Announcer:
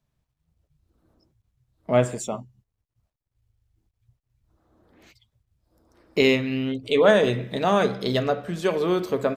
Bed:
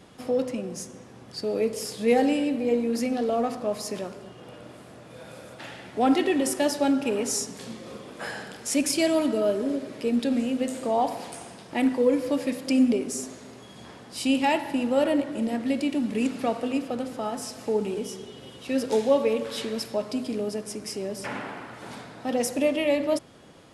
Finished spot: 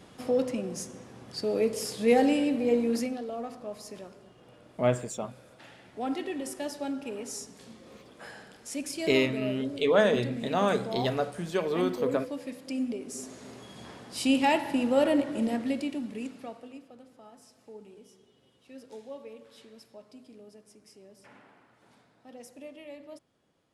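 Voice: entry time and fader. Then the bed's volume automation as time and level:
2.90 s, -5.5 dB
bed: 2.95 s -1 dB
3.23 s -11 dB
12.98 s -11 dB
13.48 s -1 dB
15.5 s -1 dB
16.92 s -21.5 dB

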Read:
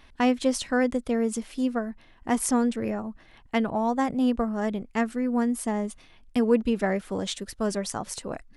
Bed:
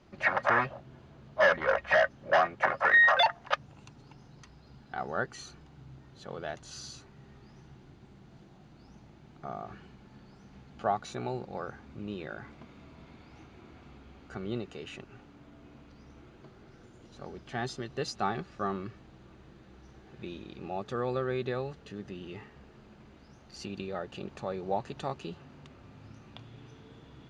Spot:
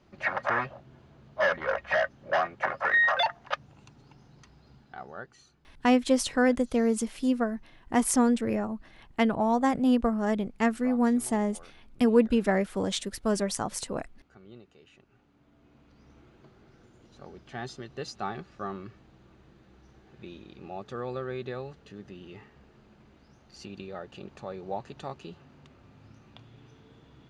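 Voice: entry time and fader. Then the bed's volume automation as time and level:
5.65 s, +0.5 dB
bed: 4.71 s -2 dB
5.52 s -14.5 dB
14.95 s -14.5 dB
16.11 s -3 dB

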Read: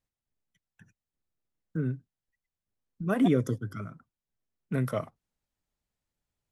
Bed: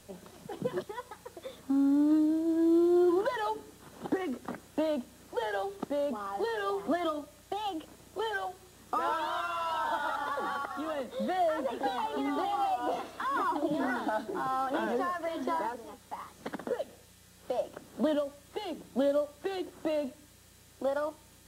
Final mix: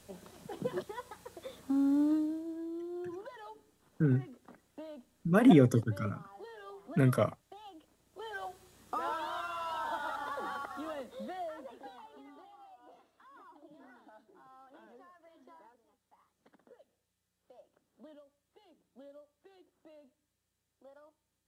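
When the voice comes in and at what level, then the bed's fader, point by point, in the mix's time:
2.25 s, +2.5 dB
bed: 2.04 s -2.5 dB
2.72 s -16.5 dB
8.05 s -16.5 dB
8.45 s -5 dB
10.86 s -5 dB
12.57 s -26 dB

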